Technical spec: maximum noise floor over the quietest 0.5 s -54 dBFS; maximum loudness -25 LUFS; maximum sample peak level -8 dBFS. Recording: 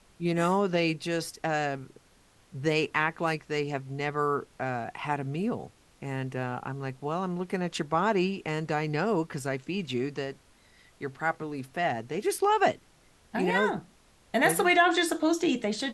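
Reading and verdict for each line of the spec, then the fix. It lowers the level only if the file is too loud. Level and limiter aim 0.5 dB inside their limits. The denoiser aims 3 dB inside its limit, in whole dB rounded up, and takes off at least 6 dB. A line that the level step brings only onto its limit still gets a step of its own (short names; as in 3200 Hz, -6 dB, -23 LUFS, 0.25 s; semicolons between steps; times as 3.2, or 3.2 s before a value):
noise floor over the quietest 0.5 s -61 dBFS: OK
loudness -29.0 LUFS: OK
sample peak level -11.0 dBFS: OK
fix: none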